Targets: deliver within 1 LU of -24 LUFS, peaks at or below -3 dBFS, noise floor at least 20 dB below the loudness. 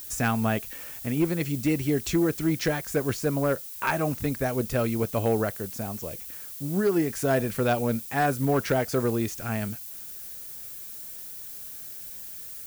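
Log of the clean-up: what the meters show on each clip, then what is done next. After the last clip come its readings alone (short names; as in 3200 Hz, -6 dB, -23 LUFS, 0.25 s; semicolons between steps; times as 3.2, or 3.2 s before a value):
clipped 0.4%; flat tops at -16.5 dBFS; noise floor -40 dBFS; noise floor target -48 dBFS; loudness -28.0 LUFS; peak -16.5 dBFS; loudness target -24.0 LUFS
-> clip repair -16.5 dBFS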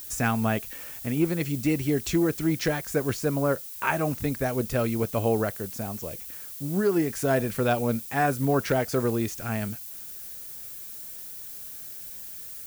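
clipped 0.0%; noise floor -40 dBFS; noise floor target -48 dBFS
-> noise print and reduce 8 dB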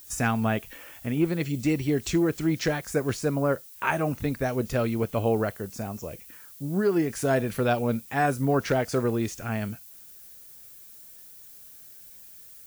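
noise floor -48 dBFS; loudness -27.0 LUFS; peak -10.5 dBFS; loudness target -24.0 LUFS
-> gain +3 dB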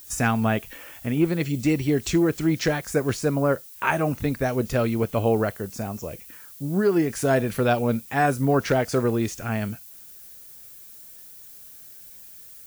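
loudness -24.0 LUFS; peak -7.5 dBFS; noise floor -45 dBFS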